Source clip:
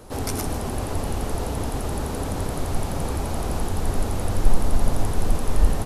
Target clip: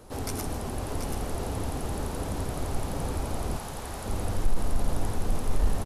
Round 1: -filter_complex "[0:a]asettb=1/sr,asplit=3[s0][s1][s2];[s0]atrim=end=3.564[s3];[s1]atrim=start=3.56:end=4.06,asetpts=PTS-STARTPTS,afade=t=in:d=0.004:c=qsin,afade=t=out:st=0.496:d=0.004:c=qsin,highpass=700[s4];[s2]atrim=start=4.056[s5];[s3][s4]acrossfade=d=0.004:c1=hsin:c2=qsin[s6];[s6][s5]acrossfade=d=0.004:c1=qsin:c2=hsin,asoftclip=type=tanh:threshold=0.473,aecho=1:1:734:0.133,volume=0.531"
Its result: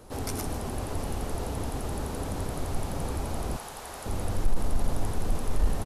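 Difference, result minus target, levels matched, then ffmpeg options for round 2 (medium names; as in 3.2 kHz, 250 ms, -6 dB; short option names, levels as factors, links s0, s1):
echo-to-direct -10.5 dB
-filter_complex "[0:a]asettb=1/sr,asplit=3[s0][s1][s2];[s0]atrim=end=3.564[s3];[s1]atrim=start=3.56:end=4.06,asetpts=PTS-STARTPTS,afade=t=in:d=0.004:c=qsin,afade=t=out:st=0.496:d=0.004:c=qsin,highpass=700[s4];[s2]atrim=start=4.056[s5];[s3][s4]acrossfade=d=0.004:c1=hsin:c2=qsin[s6];[s6][s5]acrossfade=d=0.004:c1=qsin:c2=hsin,asoftclip=type=tanh:threshold=0.473,aecho=1:1:734:0.447,volume=0.531"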